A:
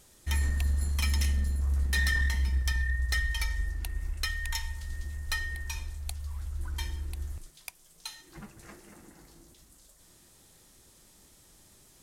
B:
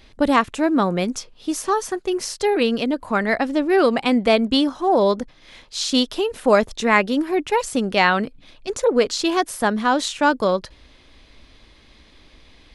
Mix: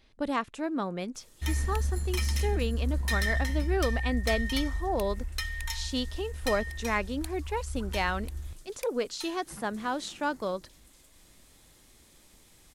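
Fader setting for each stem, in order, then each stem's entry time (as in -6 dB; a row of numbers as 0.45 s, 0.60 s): -1.5 dB, -13.0 dB; 1.15 s, 0.00 s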